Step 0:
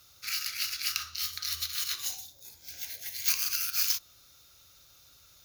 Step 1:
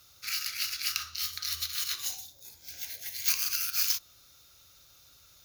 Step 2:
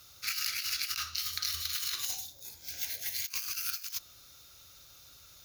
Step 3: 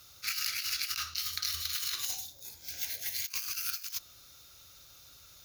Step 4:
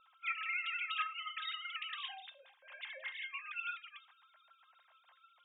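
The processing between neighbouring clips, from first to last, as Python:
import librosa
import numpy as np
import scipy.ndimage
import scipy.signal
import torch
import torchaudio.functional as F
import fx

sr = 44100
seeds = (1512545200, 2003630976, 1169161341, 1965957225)

y1 = x
y2 = fx.over_compress(y1, sr, threshold_db=-34.0, ratio=-0.5)
y3 = fx.attack_slew(y2, sr, db_per_s=480.0)
y4 = fx.sine_speech(y3, sr)
y4 = fx.env_lowpass(y4, sr, base_hz=1400.0, full_db=-29.5)
y4 = fx.comb_fb(y4, sr, f0_hz=530.0, decay_s=0.28, harmonics='all', damping=0.0, mix_pct=80)
y4 = y4 * 10.0 ** (6.0 / 20.0)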